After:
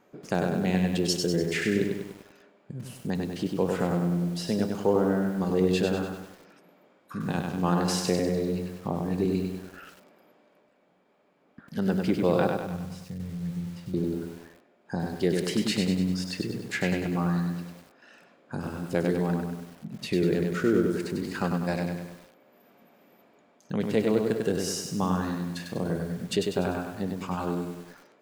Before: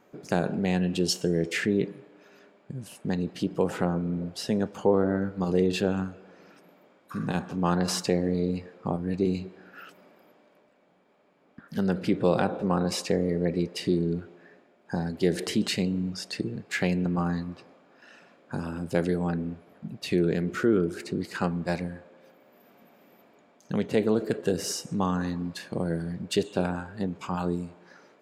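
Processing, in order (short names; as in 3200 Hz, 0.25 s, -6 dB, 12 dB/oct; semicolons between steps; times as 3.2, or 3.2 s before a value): 12.47–13.94 EQ curve 150 Hz 0 dB, 360 Hz -26 dB, 2100 Hz -19 dB; lo-fi delay 98 ms, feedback 55%, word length 8-bit, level -4 dB; gain -1.5 dB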